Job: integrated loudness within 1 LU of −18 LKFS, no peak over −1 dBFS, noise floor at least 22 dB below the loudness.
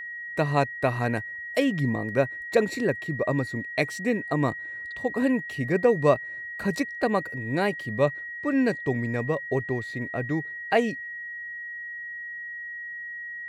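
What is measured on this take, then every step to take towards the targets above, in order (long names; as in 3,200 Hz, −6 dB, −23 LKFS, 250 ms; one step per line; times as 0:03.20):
interfering tone 1,900 Hz; level of the tone −34 dBFS; integrated loudness −27.5 LKFS; sample peak −7.5 dBFS; target loudness −18.0 LKFS
→ notch filter 1,900 Hz, Q 30
level +9.5 dB
brickwall limiter −1 dBFS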